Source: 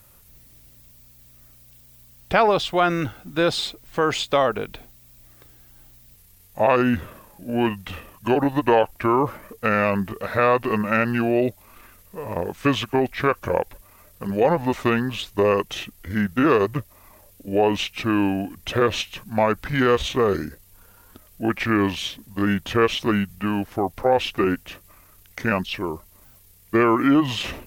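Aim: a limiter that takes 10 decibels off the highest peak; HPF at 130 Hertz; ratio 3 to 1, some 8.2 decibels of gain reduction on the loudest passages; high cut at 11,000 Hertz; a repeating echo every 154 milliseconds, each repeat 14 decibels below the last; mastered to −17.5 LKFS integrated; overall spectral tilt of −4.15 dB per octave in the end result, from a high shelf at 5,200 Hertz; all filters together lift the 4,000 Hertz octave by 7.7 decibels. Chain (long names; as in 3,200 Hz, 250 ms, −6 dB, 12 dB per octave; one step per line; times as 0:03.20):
high-pass filter 130 Hz
low-pass filter 11,000 Hz
parametric band 4,000 Hz +8.5 dB
high-shelf EQ 5,200 Hz +4 dB
downward compressor 3 to 1, threshold −24 dBFS
brickwall limiter −16.5 dBFS
repeating echo 154 ms, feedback 20%, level −14 dB
level +11.5 dB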